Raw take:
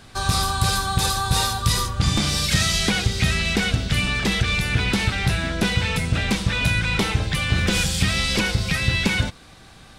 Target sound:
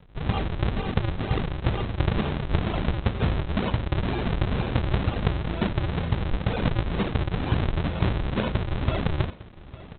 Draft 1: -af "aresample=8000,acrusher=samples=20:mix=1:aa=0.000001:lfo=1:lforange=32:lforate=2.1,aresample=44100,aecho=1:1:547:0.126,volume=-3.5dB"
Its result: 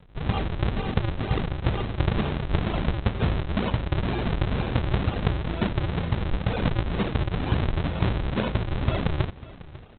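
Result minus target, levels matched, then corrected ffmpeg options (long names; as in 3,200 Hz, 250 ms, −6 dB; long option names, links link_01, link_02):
echo 308 ms early
-af "aresample=8000,acrusher=samples=20:mix=1:aa=0.000001:lfo=1:lforange=32:lforate=2.1,aresample=44100,aecho=1:1:855:0.126,volume=-3.5dB"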